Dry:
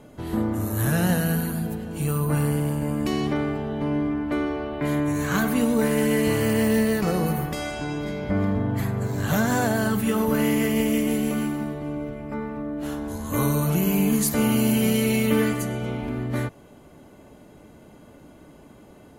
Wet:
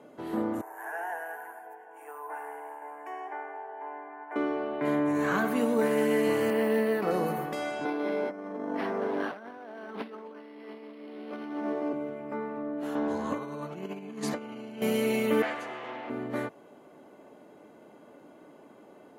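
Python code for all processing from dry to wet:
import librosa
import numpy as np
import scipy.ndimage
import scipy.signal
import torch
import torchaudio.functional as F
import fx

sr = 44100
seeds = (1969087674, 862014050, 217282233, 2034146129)

y = fx.chain(x, sr, fx.highpass(hz=590.0, slope=24),
    fx.high_shelf_res(hz=2000.0, db=-10.5, q=1.5),
    fx.fixed_phaser(hz=830.0, stages=8), at=(0.61, 4.36))
y = fx.chain(y, sr, fx.high_shelf(hz=4300.0, db=-6.5),
    fx.env_flatten(amount_pct=70), at=(4.87, 5.45))
y = fx.chain(y, sr, fx.highpass(hz=170.0, slope=12),
    fx.peak_eq(hz=6800.0, db=-12.5, octaves=0.81), at=(6.5, 7.11))
y = fx.chain(y, sr, fx.highpass(hz=230.0, slope=24),
    fx.over_compress(threshold_db=-31.0, ratio=-0.5),
    fx.resample_linear(factor=6), at=(7.85, 11.93))
y = fx.chain(y, sr, fx.lowpass(hz=5000.0, slope=12),
    fx.over_compress(threshold_db=-27.0, ratio=-0.5), at=(12.95, 14.82))
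y = fx.chain(y, sr, fx.lower_of_two(delay_ms=7.8),
    fx.bandpass_edges(low_hz=100.0, high_hz=2600.0),
    fx.tilt_eq(slope=4.0), at=(15.42, 16.1))
y = scipy.signal.sosfilt(scipy.signal.butter(2, 330.0, 'highpass', fs=sr, output='sos'), y)
y = fx.high_shelf(y, sr, hz=2600.0, db=-12.0)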